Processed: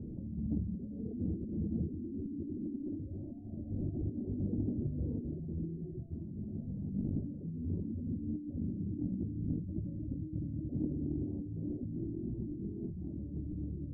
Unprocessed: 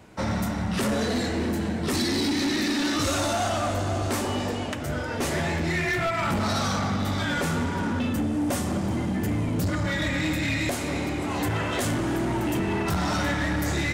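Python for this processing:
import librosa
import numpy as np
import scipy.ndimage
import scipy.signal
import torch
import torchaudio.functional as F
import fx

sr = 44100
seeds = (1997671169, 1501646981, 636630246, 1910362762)

y = fx.delta_mod(x, sr, bps=32000, step_db=-35.5)
y = fx.dereverb_blind(y, sr, rt60_s=1.6)
y = fx.echo_multitap(y, sr, ms=(67, 68, 218, 569), db=(-12.0, -12.5, -17.0, -7.5))
y = fx.over_compress(y, sr, threshold_db=-32.0, ratio=-0.5)
y = scipy.signal.sosfilt(scipy.signal.cheby2(4, 60, 1100.0, 'lowpass', fs=sr, output='sos'), y)
y = fx.transformer_sat(y, sr, knee_hz=99.0)
y = F.gain(torch.from_numpy(y), -1.5).numpy()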